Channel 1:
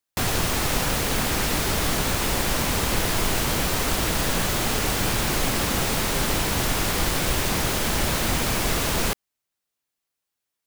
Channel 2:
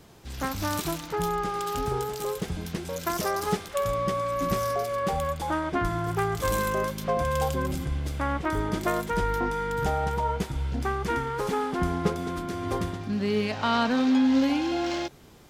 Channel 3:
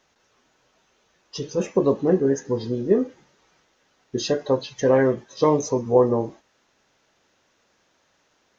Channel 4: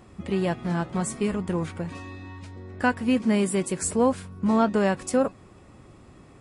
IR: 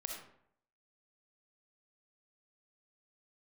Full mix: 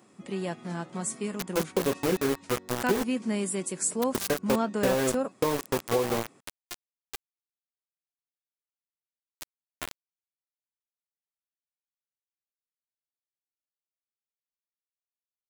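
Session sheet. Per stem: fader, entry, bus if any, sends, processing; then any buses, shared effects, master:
off
-10.0 dB, 0.95 s, bus A, no send, LFO high-pass sine 0.31 Hz 620–2400 Hz
-3.0 dB, 0.00 s, bus A, no send, bell 81 Hz -9.5 dB 0.42 oct
-7.0 dB, 0.00 s, no bus, no send, HPF 160 Hz 24 dB/oct; bell 6900 Hz +3.5 dB 0.77 oct
bus A: 0.0 dB, sample gate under -23.5 dBFS; compressor, threshold -22 dBFS, peak gain reduction 8.5 dB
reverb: off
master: high shelf 6400 Hz +8 dB

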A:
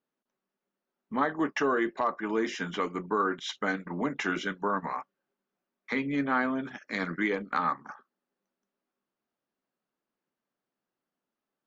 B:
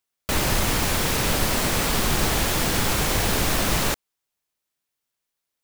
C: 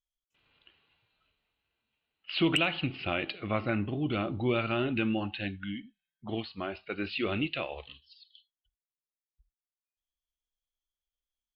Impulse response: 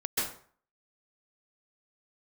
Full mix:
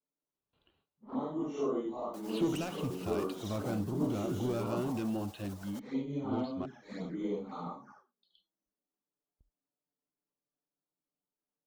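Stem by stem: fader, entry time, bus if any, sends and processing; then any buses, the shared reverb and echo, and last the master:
-3.5 dB, 0.00 s, no send, phase scrambler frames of 0.2 s; envelope flanger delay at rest 6.8 ms, full sweep at -29 dBFS
-18.5 dB, 1.85 s, no send, spectral contrast raised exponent 1.6; HPF 430 Hz
-0.5 dB, 0.00 s, muted 6.66–8.23, no send, gate with hold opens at -58 dBFS; high shelf 6200 Hz -12 dB; soft clip -28 dBFS, distortion -11 dB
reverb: off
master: bell 2200 Hz -14.5 dB 1.4 oct

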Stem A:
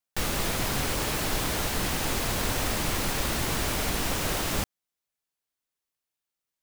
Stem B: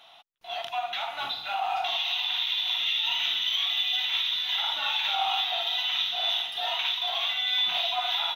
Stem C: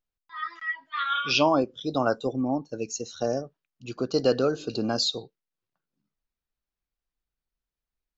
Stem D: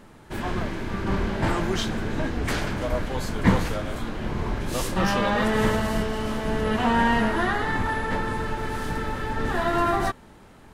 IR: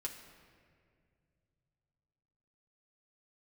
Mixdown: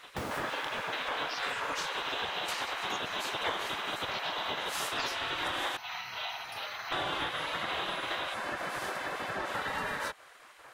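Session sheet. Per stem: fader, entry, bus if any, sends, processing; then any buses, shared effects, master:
1.37 s -3 dB -> 1.77 s -10 dB -> 3.35 s -10 dB -> 4.06 s -19.5 dB, 0.00 s, no send, tilt -2.5 dB/oct; auto duck -18 dB, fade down 1.10 s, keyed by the third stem
+2.5 dB, 0.00 s, no send, compressor, threshold -30 dBFS, peak gain reduction 7.5 dB; bell 110 Hz +12 dB 0.85 oct
-8.5 dB, 0.00 s, no send, dry
+0.5 dB, 0.00 s, muted 5.77–6.92, no send, dry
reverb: off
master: spectral gate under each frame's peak -15 dB weak; bell 950 Hz +6.5 dB 2.3 oct; compressor 3:1, threshold -33 dBFS, peak gain reduction 12 dB

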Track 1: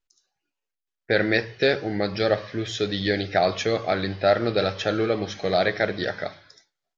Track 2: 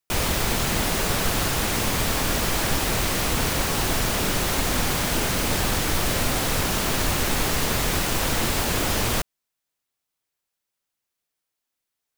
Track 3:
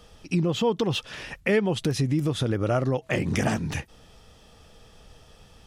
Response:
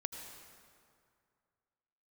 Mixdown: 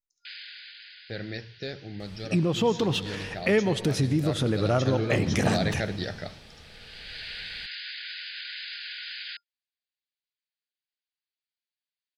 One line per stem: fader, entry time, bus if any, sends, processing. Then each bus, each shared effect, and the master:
4.46 s -18.5 dB -> 5 s -9.5 dB, 0.00 s, no send, gate -41 dBFS, range -6 dB; tone controls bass +13 dB, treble +13 dB
-13.0 dB, 0.15 s, no send, FFT band-pass 1400–5000 Hz; high shelf 2200 Hz +9 dB; auto duck -17 dB, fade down 1.50 s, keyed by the first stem
-3.5 dB, 2.00 s, send -5 dB, dry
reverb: on, RT60 2.3 s, pre-delay 73 ms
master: dry

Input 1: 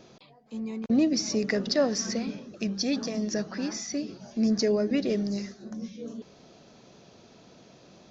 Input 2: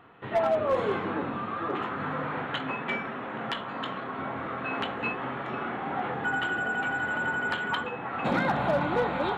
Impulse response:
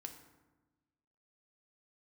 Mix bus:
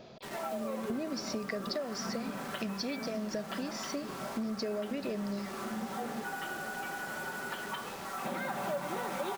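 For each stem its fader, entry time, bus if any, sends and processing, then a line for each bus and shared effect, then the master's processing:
+1.0 dB, 0.00 s, no send, thirty-one-band EQ 315 Hz -5 dB, 630 Hz +7 dB, 6300 Hz -11 dB; compressor, threshold -24 dBFS, peak gain reduction 9 dB
-3.0 dB, 0.00 s, send -5.5 dB, HPF 190 Hz 12 dB/oct; comb 5.2 ms, depth 73%; requantised 6-bit, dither none; auto duck -12 dB, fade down 0.20 s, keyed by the first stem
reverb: on, RT60 1.2 s, pre-delay 3 ms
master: compressor 4:1, threshold -34 dBFS, peak gain reduction 12.5 dB

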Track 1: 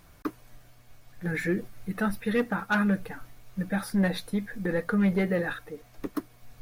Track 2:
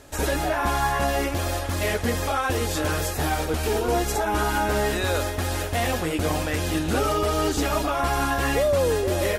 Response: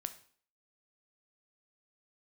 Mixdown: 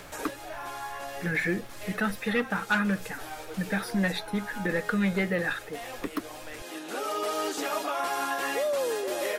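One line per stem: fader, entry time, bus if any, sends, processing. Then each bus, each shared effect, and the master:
-2.0 dB, 0.00 s, no send, bell 2600 Hz +8 dB 1.9 oct
-5.0 dB, 0.00 s, no send, Bessel high-pass 420 Hz, order 4; auto duck -12 dB, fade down 0.35 s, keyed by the first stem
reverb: off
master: three-band squash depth 40%

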